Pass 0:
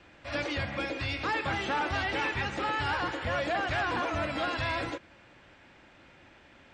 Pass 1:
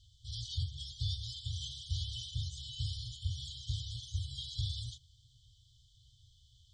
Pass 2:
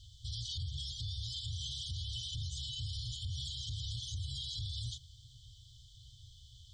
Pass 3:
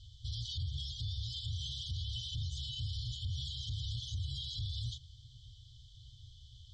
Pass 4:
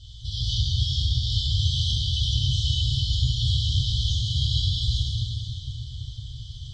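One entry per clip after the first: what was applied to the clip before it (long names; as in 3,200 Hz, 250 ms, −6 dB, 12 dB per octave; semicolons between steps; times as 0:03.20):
brick-wall band-stop 130–3,000 Hz; parametric band 2,100 Hz −8 dB 1.1 octaves; level +2 dB
downward compressor 3 to 1, threshold −38 dBFS, peak gain reduction 7 dB; brickwall limiter −39.5 dBFS, peak gain reduction 11.5 dB; level +7.5 dB
high-frequency loss of the air 100 metres; level +2 dB
dense smooth reverb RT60 4.2 s, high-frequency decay 0.65×, DRR −8 dB; level +7.5 dB; AAC 32 kbit/s 48,000 Hz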